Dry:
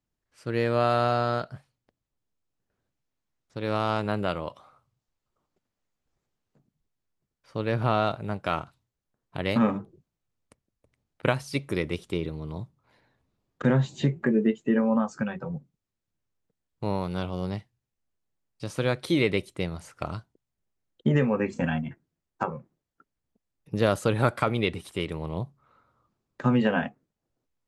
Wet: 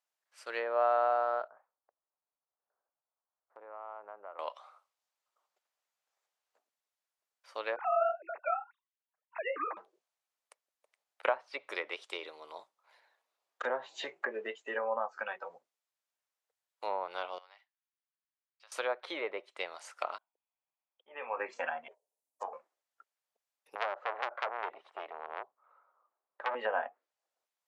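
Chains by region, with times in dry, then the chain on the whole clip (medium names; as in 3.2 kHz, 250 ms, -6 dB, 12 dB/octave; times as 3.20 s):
1.48–4.39 s: low-pass 1.3 kHz 24 dB/octave + compression 5:1, threshold -38 dBFS
7.76–9.77 s: formants replaced by sine waves + flange 1.9 Hz, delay 1.2 ms, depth 9.2 ms, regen -24%
17.38–18.72 s: high-pass 1.4 kHz + compression 2:1, threshold -52 dBFS + tape spacing loss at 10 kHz 28 dB
20.18–21.37 s: slow attack 222 ms + rippled Chebyshev low-pass 3.5 kHz, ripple 9 dB
21.88–22.53 s: FFT filter 710 Hz 0 dB, 1.1 kHz -27 dB, 1.9 kHz -21 dB, 2.8 kHz -15 dB, 9.5 kHz +8 dB + ring modulator 280 Hz
23.75–26.55 s: low-pass 1.3 kHz + bass shelf 63 Hz -8 dB + transformer saturation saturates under 2.9 kHz
whole clip: high-pass 610 Hz 24 dB/octave; low-pass that closes with the level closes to 1.1 kHz, closed at -29 dBFS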